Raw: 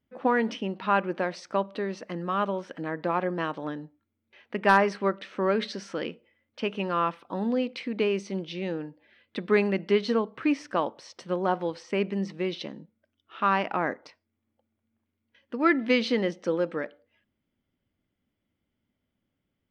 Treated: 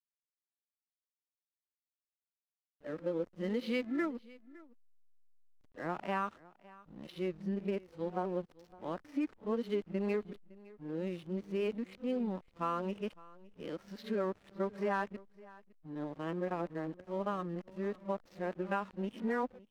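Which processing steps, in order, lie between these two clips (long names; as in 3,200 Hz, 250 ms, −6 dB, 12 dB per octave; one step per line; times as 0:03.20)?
played backwards from end to start
harmonic and percussive parts rebalanced percussive −12 dB
downward compressor 6 to 1, threshold −25 dBFS, peak gain reduction 10.5 dB
slack as between gear wheels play −43 dBFS
on a send: single-tap delay 560 ms −21.5 dB
on the sum: level −5 dB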